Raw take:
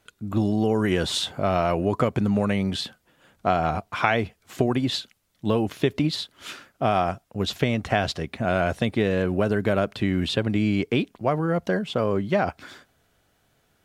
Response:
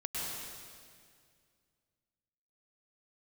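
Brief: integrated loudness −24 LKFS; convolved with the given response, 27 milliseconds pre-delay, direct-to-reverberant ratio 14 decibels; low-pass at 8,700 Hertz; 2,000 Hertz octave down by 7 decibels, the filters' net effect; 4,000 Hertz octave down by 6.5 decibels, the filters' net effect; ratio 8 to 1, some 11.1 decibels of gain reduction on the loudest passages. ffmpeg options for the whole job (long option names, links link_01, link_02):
-filter_complex "[0:a]lowpass=8700,equalizer=frequency=2000:width_type=o:gain=-8.5,equalizer=frequency=4000:width_type=o:gain=-5,acompressor=threshold=-30dB:ratio=8,asplit=2[link_01][link_02];[1:a]atrim=start_sample=2205,adelay=27[link_03];[link_02][link_03]afir=irnorm=-1:irlink=0,volume=-18dB[link_04];[link_01][link_04]amix=inputs=2:normalize=0,volume=11.5dB"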